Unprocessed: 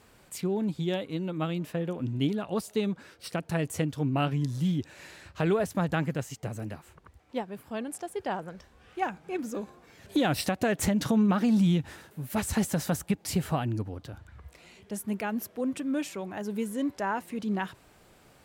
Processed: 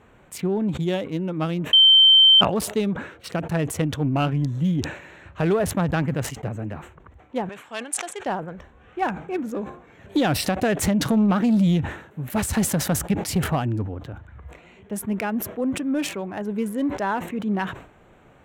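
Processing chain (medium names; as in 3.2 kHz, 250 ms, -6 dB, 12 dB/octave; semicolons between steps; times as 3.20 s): local Wiener filter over 9 samples; 7.49–8.26 s: frequency weighting ITU-R 468; saturation -17.5 dBFS, distortion -22 dB; 1.73–2.41 s: bleep 3.11 kHz -15.5 dBFS; decay stretcher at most 100 dB/s; trim +6 dB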